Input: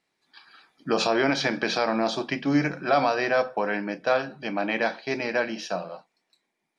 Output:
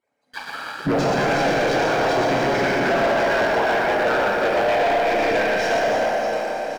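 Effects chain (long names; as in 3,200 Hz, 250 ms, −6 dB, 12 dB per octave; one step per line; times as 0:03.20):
harmonic-percussive split with one part muted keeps percussive
high-shelf EQ 5,300 Hz +11 dB
comb filter 1.3 ms, depth 31%
downward compressor 6 to 1, threshold −38 dBFS, peak gain reduction 19 dB
octave-band graphic EQ 125/250/500/4,000 Hz +12/+8/+10/−8 dB
mid-hump overdrive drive 18 dB, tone 1,300 Hz, clips at −17.5 dBFS
reverse bouncing-ball delay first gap 120 ms, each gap 1.6×, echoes 5
four-comb reverb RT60 3 s, combs from 25 ms, DRR −2.5 dB
leveller curve on the samples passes 3
level −1 dB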